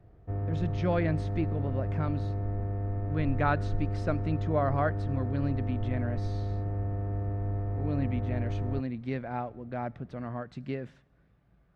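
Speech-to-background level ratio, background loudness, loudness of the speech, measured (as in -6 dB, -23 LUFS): -1.0 dB, -33.0 LUFS, -34.0 LUFS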